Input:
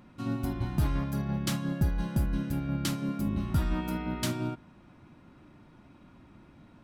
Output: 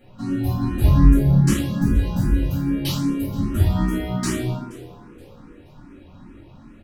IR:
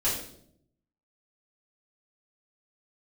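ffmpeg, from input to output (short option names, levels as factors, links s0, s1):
-filter_complex "[0:a]asettb=1/sr,asplit=3[s0][s1][s2];[s0]atrim=end=0.834[s3];[s1]atrim=start=0.83:end=1.5,asetpts=PTS-STARTPTS,afade=t=in:d=0.004:c=qsin,afade=t=out:st=0.666:d=0.004:c=qsin,lowshelf=f=300:g=11.5[s4];[s2]atrim=start=1.496[s5];[s3][s4]acrossfade=d=0.004:c1=hsin:c2=qsin[s6];[s6][s5]acrossfade=d=0.004:c1=qsin:c2=hsin,asplit=4[s7][s8][s9][s10];[s8]adelay=475,afreqshift=85,volume=0.0841[s11];[s9]adelay=950,afreqshift=170,volume=0.0295[s12];[s10]adelay=1425,afreqshift=255,volume=0.0104[s13];[s7][s11][s12][s13]amix=inputs=4:normalize=0[s14];[1:a]atrim=start_sample=2205[s15];[s14][s15]afir=irnorm=-1:irlink=0,asplit=2[s16][s17];[s17]afreqshift=2.5[s18];[s16][s18]amix=inputs=2:normalize=1,volume=1.12"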